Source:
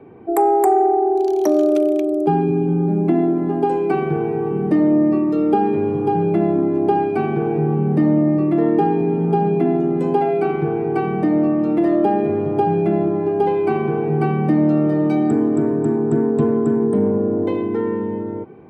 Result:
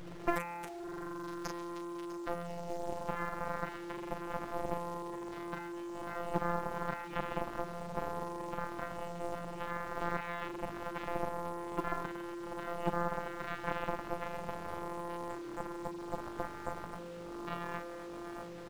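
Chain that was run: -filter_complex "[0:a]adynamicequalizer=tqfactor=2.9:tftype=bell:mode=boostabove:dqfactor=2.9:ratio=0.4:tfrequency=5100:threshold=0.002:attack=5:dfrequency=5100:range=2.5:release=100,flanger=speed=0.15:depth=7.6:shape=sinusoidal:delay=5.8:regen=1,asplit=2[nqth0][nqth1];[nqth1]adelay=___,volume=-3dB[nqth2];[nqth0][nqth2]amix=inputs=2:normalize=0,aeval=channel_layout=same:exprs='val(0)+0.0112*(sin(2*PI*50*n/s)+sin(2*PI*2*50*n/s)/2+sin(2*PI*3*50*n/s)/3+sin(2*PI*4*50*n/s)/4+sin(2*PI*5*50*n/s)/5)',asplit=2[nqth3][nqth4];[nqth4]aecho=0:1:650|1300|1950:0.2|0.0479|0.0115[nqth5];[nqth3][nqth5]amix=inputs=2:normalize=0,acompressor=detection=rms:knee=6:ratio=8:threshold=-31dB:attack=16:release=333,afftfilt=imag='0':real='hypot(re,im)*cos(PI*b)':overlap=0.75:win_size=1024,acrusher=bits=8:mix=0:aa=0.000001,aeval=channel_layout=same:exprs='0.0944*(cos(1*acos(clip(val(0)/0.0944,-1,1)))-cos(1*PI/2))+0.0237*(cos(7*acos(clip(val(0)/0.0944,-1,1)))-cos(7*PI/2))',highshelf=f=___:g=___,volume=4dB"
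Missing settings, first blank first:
37, 8200, -11.5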